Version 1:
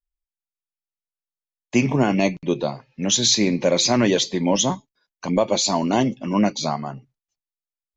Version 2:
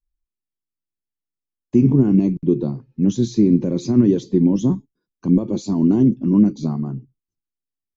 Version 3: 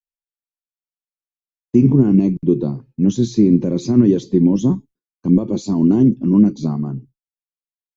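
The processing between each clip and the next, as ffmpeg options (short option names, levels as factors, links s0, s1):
-af "alimiter=limit=0.251:level=0:latency=1:release=53,firequalizer=gain_entry='entry(350,0);entry(600,-22);entry(1200,-19);entry(2000,-28);entry(5900,-24)':delay=0.05:min_phase=1,volume=2.66"
-af "agate=range=0.0224:threshold=0.0126:ratio=3:detection=peak,volume=1.26"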